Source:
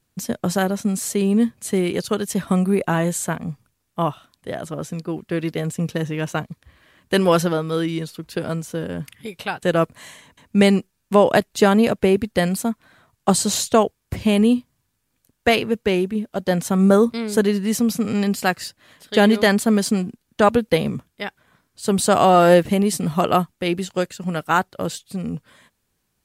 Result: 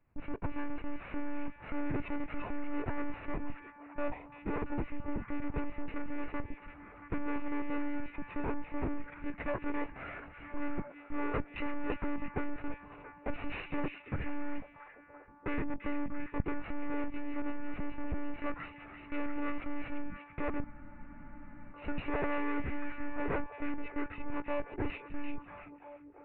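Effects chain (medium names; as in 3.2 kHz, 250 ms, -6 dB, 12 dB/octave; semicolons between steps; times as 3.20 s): treble shelf 2.1 kHz -6 dB; peak limiter -11 dBFS, peak gain reduction 7.5 dB; valve stage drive 34 dB, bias 0.6; monotone LPC vocoder at 8 kHz 290 Hz; formant shift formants -6 st; repeats whose band climbs or falls 340 ms, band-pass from 2.7 kHz, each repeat -0.7 oct, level -5 dB; spectral freeze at 20.67 s, 1.06 s; trim +4 dB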